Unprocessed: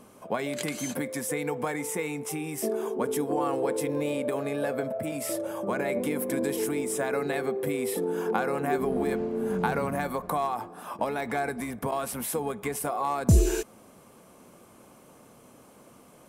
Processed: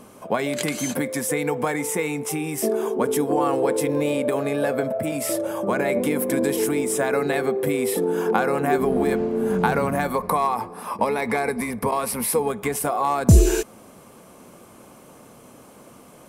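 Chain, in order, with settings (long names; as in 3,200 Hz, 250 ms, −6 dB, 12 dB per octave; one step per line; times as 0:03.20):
0:10.15–0:12.48: EQ curve with evenly spaced ripples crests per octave 0.89, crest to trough 7 dB
level +6.5 dB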